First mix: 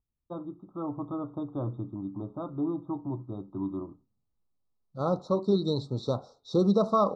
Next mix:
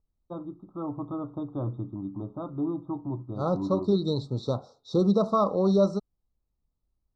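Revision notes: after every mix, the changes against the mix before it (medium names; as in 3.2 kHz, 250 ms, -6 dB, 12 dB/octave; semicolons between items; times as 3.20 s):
second voice: entry -1.60 s; master: add bass shelf 150 Hz +3.5 dB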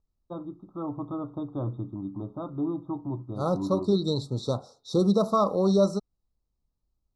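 master: remove distance through air 120 m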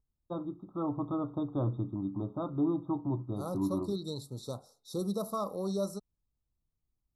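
second voice -11.5 dB; master: remove Bessel low-pass 4.9 kHz, order 4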